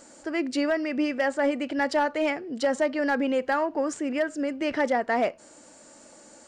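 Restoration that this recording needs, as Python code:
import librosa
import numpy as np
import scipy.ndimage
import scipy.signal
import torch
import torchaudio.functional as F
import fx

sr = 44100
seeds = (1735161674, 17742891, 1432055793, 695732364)

y = fx.fix_declip(x, sr, threshold_db=-16.5)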